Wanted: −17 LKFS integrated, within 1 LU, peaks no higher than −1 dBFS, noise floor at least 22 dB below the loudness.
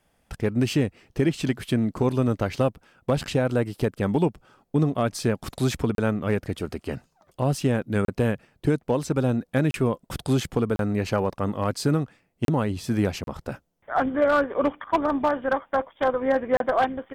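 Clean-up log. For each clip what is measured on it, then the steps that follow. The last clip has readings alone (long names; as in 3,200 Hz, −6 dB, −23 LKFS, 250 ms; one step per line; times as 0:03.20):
share of clipped samples 0.2%; peaks flattened at −13.0 dBFS; number of dropouts 7; longest dropout 32 ms; integrated loudness −25.5 LKFS; sample peak −13.0 dBFS; target loudness −17.0 LKFS
→ clipped peaks rebuilt −13 dBFS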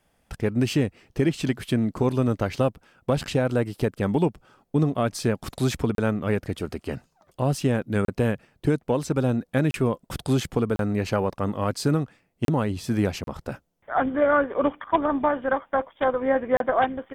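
share of clipped samples 0.0%; number of dropouts 7; longest dropout 32 ms
→ repair the gap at 0:05.95/0:08.05/0:09.71/0:10.76/0:12.45/0:13.24/0:16.57, 32 ms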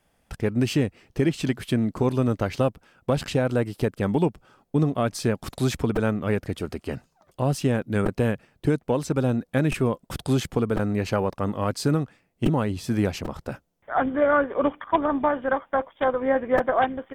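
number of dropouts 0; integrated loudness −25.0 LKFS; sample peak −7.5 dBFS; target loudness −17.0 LKFS
→ level +8 dB
brickwall limiter −1 dBFS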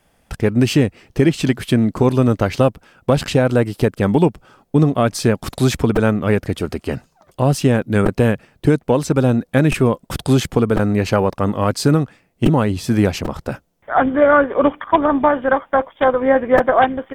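integrated loudness −17.0 LKFS; sample peak −1.0 dBFS; background noise floor −61 dBFS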